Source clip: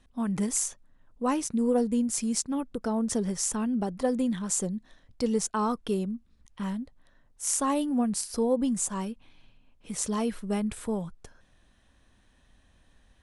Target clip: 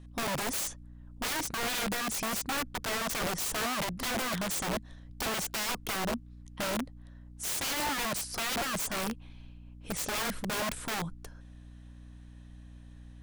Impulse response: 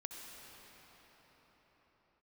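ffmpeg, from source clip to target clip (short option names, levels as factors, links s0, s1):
-filter_complex "[0:a]aeval=exprs='val(0)+0.00355*(sin(2*PI*60*n/s)+sin(2*PI*2*60*n/s)/2+sin(2*PI*3*60*n/s)/3+sin(2*PI*4*60*n/s)/4+sin(2*PI*5*60*n/s)/5)':c=same,acrossover=split=8900[s0][s1];[s1]acompressor=threshold=0.00447:ratio=4:attack=1:release=60[s2];[s0][s2]amix=inputs=2:normalize=0,aeval=exprs='(mod(26.6*val(0)+1,2)-1)/26.6':c=same,volume=1.12"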